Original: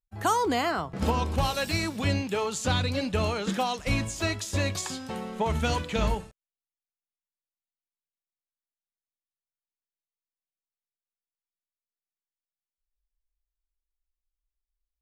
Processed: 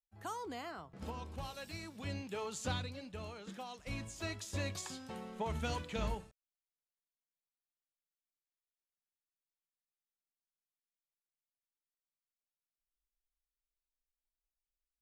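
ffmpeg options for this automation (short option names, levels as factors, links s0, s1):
-af "volume=0.75,afade=t=in:st=1.88:d=0.79:silence=0.421697,afade=t=out:st=2.67:d=0.29:silence=0.375837,afade=t=in:st=3.65:d=0.85:silence=0.398107"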